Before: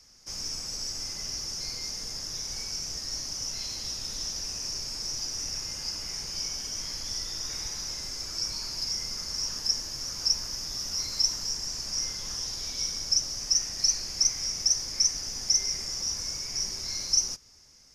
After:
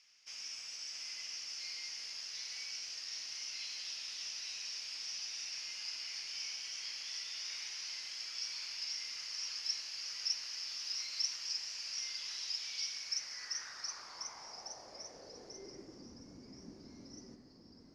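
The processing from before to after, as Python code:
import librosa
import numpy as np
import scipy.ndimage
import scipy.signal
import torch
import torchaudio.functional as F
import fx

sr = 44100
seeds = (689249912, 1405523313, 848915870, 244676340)

y = fx.echo_pitch(x, sr, ms=634, semitones=-1, count=3, db_per_echo=-6.0)
y = fx.filter_sweep_bandpass(y, sr, from_hz=2700.0, to_hz=260.0, start_s=12.9, end_s=16.18, q=2.9)
y = y * 10.0 ** (3.0 / 20.0)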